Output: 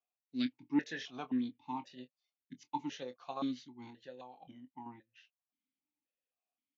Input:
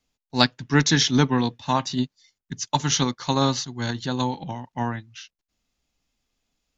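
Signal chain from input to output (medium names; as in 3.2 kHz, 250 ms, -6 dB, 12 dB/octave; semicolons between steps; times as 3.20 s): 3.88–4.86 s: compression 6:1, threshold -27 dBFS, peak gain reduction 8 dB; doubling 24 ms -11 dB; stepped vowel filter 3.8 Hz; trim -7 dB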